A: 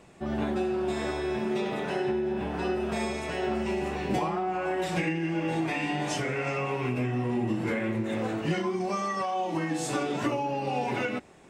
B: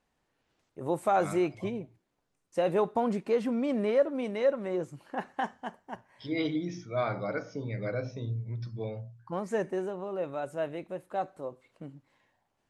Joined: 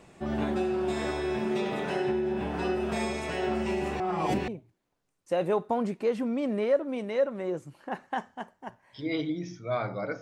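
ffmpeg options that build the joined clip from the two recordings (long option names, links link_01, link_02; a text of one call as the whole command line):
ffmpeg -i cue0.wav -i cue1.wav -filter_complex "[0:a]apad=whole_dur=10.21,atrim=end=10.21,asplit=2[link_01][link_02];[link_01]atrim=end=4.002[link_03];[link_02]atrim=start=3.998:end=4.482,asetpts=PTS-STARTPTS,areverse[link_04];[1:a]atrim=start=1.738:end=7.47[link_05];[link_03][link_04]acrossfade=duration=0.004:curve1=hsin:curve2=hsin[link_06];[link_06][link_05]acrossfade=duration=0.004:curve1=hsin:curve2=hsin" out.wav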